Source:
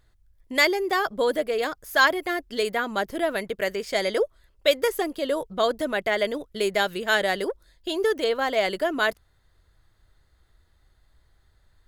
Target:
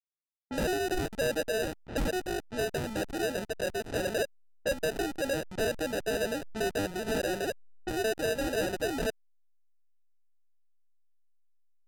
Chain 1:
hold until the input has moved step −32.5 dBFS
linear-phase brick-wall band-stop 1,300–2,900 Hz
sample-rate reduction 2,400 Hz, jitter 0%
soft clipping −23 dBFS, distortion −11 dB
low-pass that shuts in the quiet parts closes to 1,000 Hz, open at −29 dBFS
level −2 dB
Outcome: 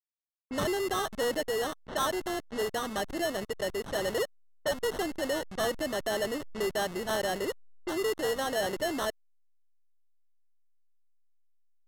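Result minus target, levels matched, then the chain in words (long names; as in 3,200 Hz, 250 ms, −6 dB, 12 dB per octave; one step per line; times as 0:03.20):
sample-rate reduction: distortion −20 dB
hold until the input has moved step −32.5 dBFS
linear-phase brick-wall band-stop 1,300–2,900 Hz
sample-rate reduction 1,100 Hz, jitter 0%
soft clipping −23 dBFS, distortion −11 dB
low-pass that shuts in the quiet parts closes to 1,000 Hz, open at −29 dBFS
level −2 dB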